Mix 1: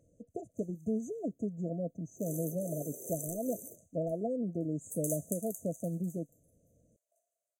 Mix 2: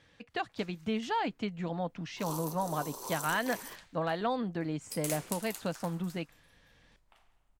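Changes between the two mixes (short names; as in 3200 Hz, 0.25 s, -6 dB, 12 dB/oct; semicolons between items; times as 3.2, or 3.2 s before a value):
first sound: remove inverse Chebyshev high-pass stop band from 190 Hz, stop band 60 dB; master: remove brick-wall FIR band-stop 700–6000 Hz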